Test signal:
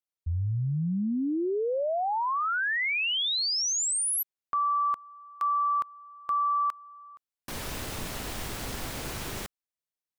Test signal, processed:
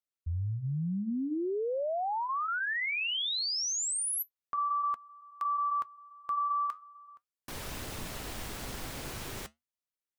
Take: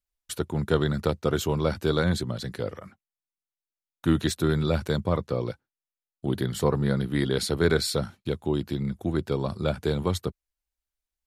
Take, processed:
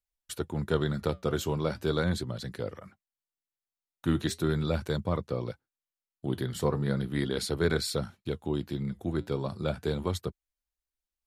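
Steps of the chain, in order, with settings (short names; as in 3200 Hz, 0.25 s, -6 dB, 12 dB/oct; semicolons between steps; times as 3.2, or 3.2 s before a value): flange 0.38 Hz, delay 0.1 ms, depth 8.7 ms, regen -77%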